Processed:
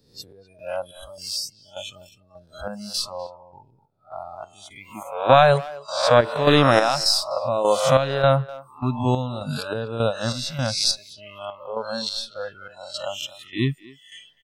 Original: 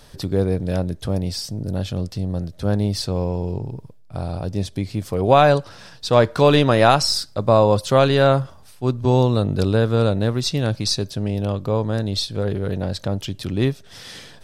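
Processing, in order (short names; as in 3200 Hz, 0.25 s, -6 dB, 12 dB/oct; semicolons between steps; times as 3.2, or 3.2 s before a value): spectral swells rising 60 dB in 0.89 s; spectral noise reduction 28 dB; chopper 1.7 Hz, depth 60%, duty 55%; speakerphone echo 0.25 s, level -18 dB; gain -1 dB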